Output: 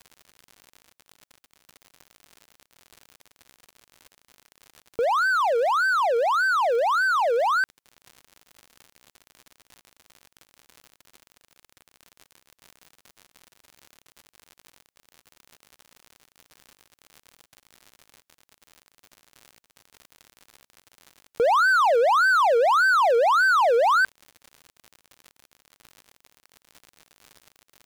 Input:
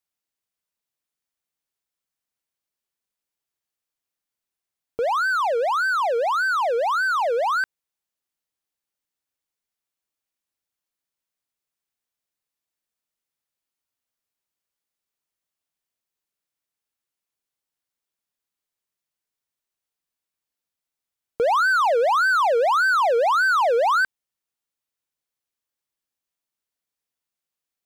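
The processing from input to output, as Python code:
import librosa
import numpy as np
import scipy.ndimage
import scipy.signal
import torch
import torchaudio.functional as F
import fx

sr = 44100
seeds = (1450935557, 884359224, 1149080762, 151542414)

y = fx.dmg_crackle(x, sr, seeds[0], per_s=90.0, level_db=-34.0)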